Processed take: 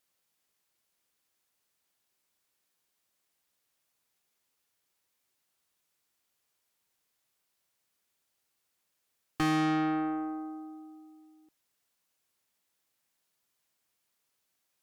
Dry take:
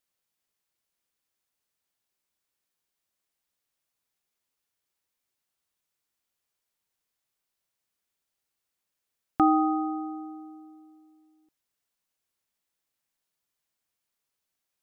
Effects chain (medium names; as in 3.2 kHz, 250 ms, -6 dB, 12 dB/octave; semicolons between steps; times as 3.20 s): tracing distortion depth 0.095 ms; bass shelf 70 Hz -6.5 dB; valve stage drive 32 dB, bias 0.45; trim +6.5 dB